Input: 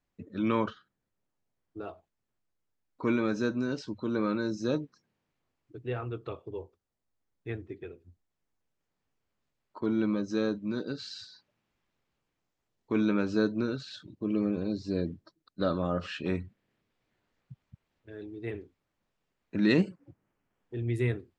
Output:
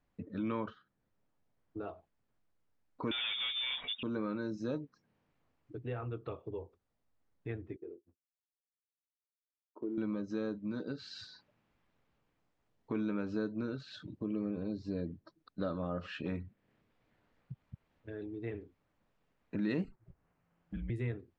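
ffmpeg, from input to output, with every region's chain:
-filter_complex "[0:a]asettb=1/sr,asplit=3[s0][s1][s2];[s0]atrim=end=3.114[s3];[s1]atrim=start=3.11:end=4.03,asetpts=PTS-STARTPTS,afade=t=in:d=0.004:c=qsin,afade=t=out:st=0.916:d=0.004:c=qsin,highpass=170,asplit=2[s4][s5];[s5]highpass=f=720:p=1,volume=28.2,asoftclip=type=tanh:threshold=0.126[s6];[s4][s6]amix=inputs=2:normalize=0,lowpass=f=1400:p=1,volume=0.501,lowpass=f=3200:t=q:w=0.5098,lowpass=f=3200:t=q:w=0.6013,lowpass=f=3200:t=q:w=0.9,lowpass=f=3200:t=q:w=2.563,afreqshift=-3800[s7];[s2]atrim=start=4.026[s8];[s3][s7]acrossfade=d=0.004:c1=hsin:c2=qsin[s9];[s9][s8]acrossfade=d=0.004:c1=qsin:c2=hsin,asettb=1/sr,asplit=3[s10][s11][s12];[s10]atrim=end=7.764[s13];[s11]atrim=start=7.76:end=9.98,asetpts=PTS-STARTPTS,afade=t=in:d=0.004:c=qsin,afade=t=out:st=2.216:d=0.004:c=qsin,agate=range=0.0224:threshold=0.00251:ratio=3:release=100:detection=peak,acrusher=bits=4:mode=log:mix=0:aa=0.000001,bandpass=f=360:t=q:w=3.4[s14];[s12]atrim=start=9.976[s15];[s13][s14]acrossfade=d=0.004:c1=hsin:c2=qsin[s16];[s16][s15]acrossfade=d=0.004:c1=qsin:c2=hsin,asettb=1/sr,asplit=3[s17][s18][s19];[s17]atrim=end=19.844[s20];[s18]atrim=start=19.84:end=20.9,asetpts=PTS-STARTPTS,afade=t=in:d=0.004:c=qsin,afade=t=out:st=1.056:d=0.004:c=qsin,equalizer=f=68:t=o:w=2.1:g=-10,afreqshift=-170[s21];[s19]atrim=start=20.896[s22];[s20][s21]acrossfade=d=0.004:c1=hsin:c2=qsin[s23];[s23][s22]acrossfade=d=0.004:c1=qsin:c2=hsin,aemphasis=mode=reproduction:type=75kf,bandreject=f=370:w=12,acompressor=threshold=0.00398:ratio=2,volume=1.78"

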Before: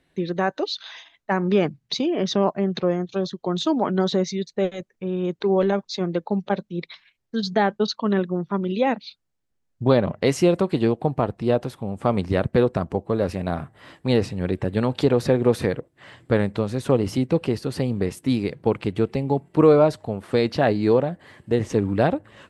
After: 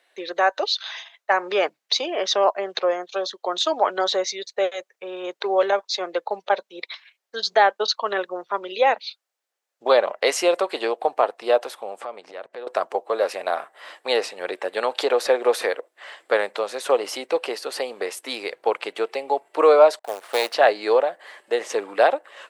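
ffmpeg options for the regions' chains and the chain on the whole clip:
-filter_complex "[0:a]asettb=1/sr,asplit=3[s0][s1][s2];[s0]atrim=end=12.014[s3];[s1]atrim=start=12.01:end=12.67,asetpts=PTS-STARTPTS,afade=t=in:d=0.004:c=qsin,afade=t=out:st=0.656:d=0.004:c=qsin,lowpass=7900,lowshelf=f=260:g=9,acompressor=threshold=0.0398:ratio=10:attack=3.2:release=140:knee=1:detection=peak[s4];[s2]atrim=start=12.666[s5];[s3][s4]acrossfade=d=0.004:c1=hsin:c2=qsin[s6];[s6][s5]acrossfade=d=0.004:c1=qsin:c2=hsin,asettb=1/sr,asplit=3[s7][s8][s9];[s7]atrim=end=19.994[s10];[s8]atrim=start=19.99:end=20.54,asetpts=PTS-STARTPTS,afade=t=in:d=0.004:c=qsin,afade=t=out:st=0.546:d=0.004:c=qsin,aeval=exprs='if(lt(val(0),0),0.251*val(0),val(0))':c=same,agate=range=0.0316:threshold=0.00316:ratio=16:release=100:detection=peak,acrusher=bits=5:mode=log:mix=0:aa=0.000001[s11];[s9]atrim=start=20.536[s12];[s10][s11]acrossfade=d=0.004:c1=hsin:c2=qsin[s13];[s13][s12]acrossfade=d=0.004:c1=qsin:c2=hsin,highpass=f=530:w=0.5412,highpass=f=530:w=1.3066,bandreject=f=960:w=29,volume=2"

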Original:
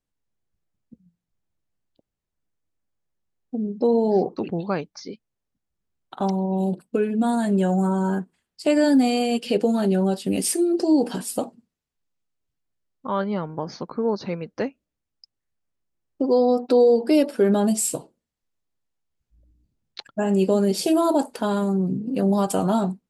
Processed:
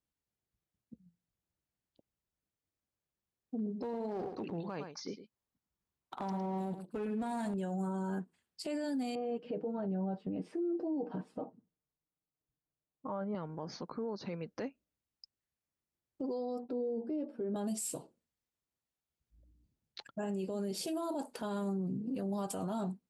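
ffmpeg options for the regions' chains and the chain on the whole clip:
-filter_complex "[0:a]asettb=1/sr,asplit=3[s0][s1][s2];[s0]atrim=end=3.554[s3];[s1]atrim=start=3.55:end=7.54,asetpts=PTS-STARTPTS,afade=t=in:d=0.004:c=qsin,afade=t=out:st=3.986:d=0.004:c=qsin,equalizer=f=1000:w=2.6:g=5.5,aeval=exprs='clip(val(0),-1,0.0794)':c=same,aecho=1:1:108:0.224,atrim=end_sample=175959[s4];[s2]atrim=start=7.536[s5];[s3][s4]acrossfade=d=0.004:c1=hsin:c2=qsin[s6];[s6][s5]acrossfade=d=0.004:c1=qsin:c2=hsin,asettb=1/sr,asplit=3[s7][s8][s9];[s7]atrim=end=9.154[s10];[s8]atrim=start=9.15:end=13.35,asetpts=PTS-STARTPTS,afade=t=in:d=0.004:c=qsin,afade=t=out:st=4.196:d=0.004:c=qsin,lowpass=1100,aecho=1:1:6.5:0.46,atrim=end_sample=185220[s11];[s9]atrim=start=13.346[s12];[s10][s11]acrossfade=d=0.004:c1=hsin:c2=qsin[s13];[s13][s12]acrossfade=d=0.004:c1=qsin:c2=hsin,asettb=1/sr,asplit=3[s14][s15][s16];[s14]atrim=end=16.644[s17];[s15]atrim=start=16.64:end=17.56,asetpts=PTS-STARTPTS,afade=t=in:d=0.004:c=qsin,afade=t=out:st=0.916:d=0.004:c=qsin,bandpass=f=200:t=q:w=0.54,asplit=2[s18][s19];[s19]adelay=13,volume=0.422[s20];[s18][s20]amix=inputs=2:normalize=0,atrim=end_sample=40572[s21];[s16]atrim=start=17.556[s22];[s17][s21]acrossfade=d=0.004:c1=hsin:c2=qsin[s23];[s23][s22]acrossfade=d=0.004:c1=qsin:c2=hsin,highpass=42,acompressor=threshold=0.0282:ratio=2,alimiter=level_in=1.06:limit=0.0631:level=0:latency=1:release=10,volume=0.944,volume=0.531"

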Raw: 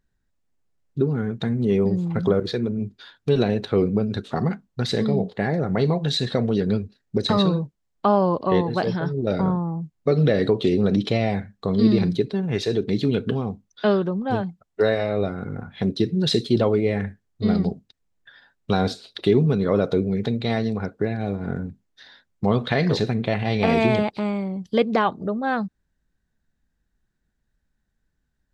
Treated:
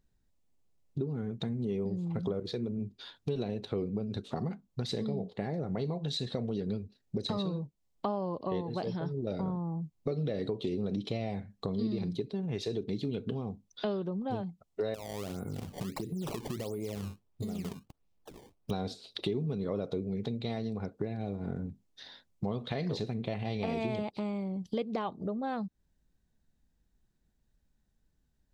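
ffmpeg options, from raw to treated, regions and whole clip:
-filter_complex "[0:a]asettb=1/sr,asplit=3[s0][s1][s2];[s0]atrim=end=14.944[s3];[s1]atrim=start=14.94:end=18.71,asetpts=PTS-STARTPTS,afade=t=in:d=0.004:c=qsin,afade=t=out:st=3.766:d=0.004:c=qsin,acompressor=threshold=0.0398:ratio=6:attack=3.2:release=140:knee=1:detection=peak,acrusher=samples=19:mix=1:aa=0.000001:lfo=1:lforange=30.4:lforate=1.5[s4];[s2]atrim=start=18.706[s5];[s3][s4]acrossfade=d=0.004:c1=hsin:c2=qsin[s6];[s6][s5]acrossfade=d=0.004:c1=qsin:c2=hsin,equalizer=f=1600:t=o:w=0.79:g=-8.5,acompressor=threshold=0.0178:ratio=3"

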